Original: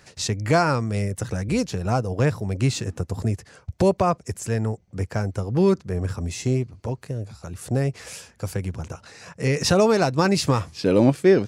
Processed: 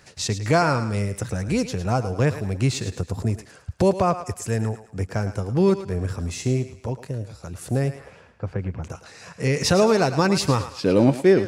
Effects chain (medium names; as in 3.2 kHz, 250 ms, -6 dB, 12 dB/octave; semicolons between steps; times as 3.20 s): 7.94–8.82 s: low-pass 1.2 kHz -> 2.3 kHz 12 dB/octave; thinning echo 108 ms, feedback 41%, high-pass 500 Hz, level -10.5 dB